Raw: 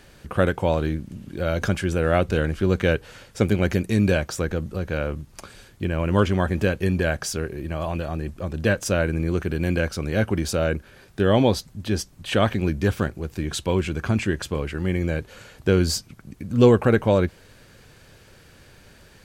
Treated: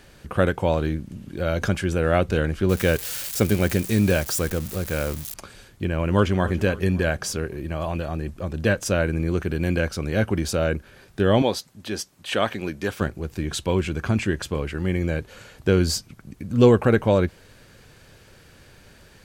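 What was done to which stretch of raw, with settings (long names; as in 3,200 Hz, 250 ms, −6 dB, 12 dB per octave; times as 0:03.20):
0:02.69–0:05.34: spike at every zero crossing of −21.5 dBFS
0:06.06–0:06.58: delay throw 280 ms, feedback 50%, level −16.5 dB
0:11.42–0:13.01: high-pass filter 420 Hz 6 dB per octave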